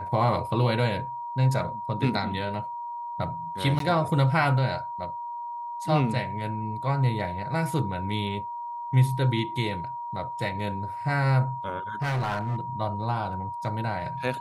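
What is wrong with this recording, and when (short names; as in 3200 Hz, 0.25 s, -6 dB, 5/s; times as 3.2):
tone 950 Hz -32 dBFS
3.79–3.8 gap 13 ms
12.02–12.61 clipped -24 dBFS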